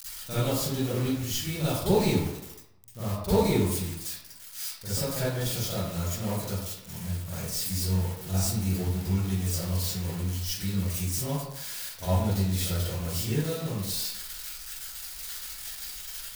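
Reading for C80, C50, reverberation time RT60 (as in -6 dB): 1.5 dB, -6.0 dB, 0.80 s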